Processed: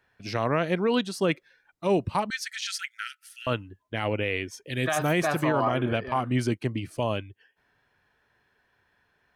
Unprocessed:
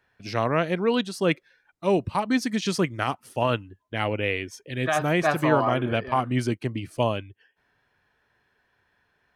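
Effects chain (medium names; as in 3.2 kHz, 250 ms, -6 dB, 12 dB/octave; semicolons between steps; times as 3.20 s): 4.65–5.34 s: treble shelf 4.6 kHz -> 8.8 kHz +11.5 dB; peak limiter -14.5 dBFS, peak gain reduction 9 dB; 2.30–3.47 s: brick-wall FIR high-pass 1.3 kHz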